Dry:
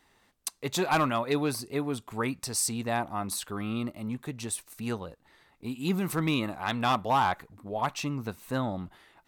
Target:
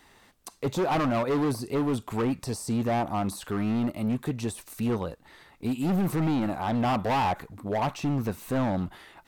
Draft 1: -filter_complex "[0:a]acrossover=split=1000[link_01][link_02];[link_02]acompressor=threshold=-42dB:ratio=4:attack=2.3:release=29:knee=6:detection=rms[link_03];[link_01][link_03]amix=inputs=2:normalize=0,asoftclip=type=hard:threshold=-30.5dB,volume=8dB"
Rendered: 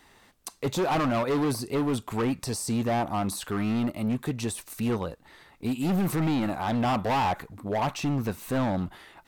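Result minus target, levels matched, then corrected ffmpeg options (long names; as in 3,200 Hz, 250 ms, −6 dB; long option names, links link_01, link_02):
downward compressor: peak gain reduction −5 dB
-filter_complex "[0:a]acrossover=split=1000[link_01][link_02];[link_02]acompressor=threshold=-48.5dB:ratio=4:attack=2.3:release=29:knee=6:detection=rms[link_03];[link_01][link_03]amix=inputs=2:normalize=0,asoftclip=type=hard:threshold=-30.5dB,volume=8dB"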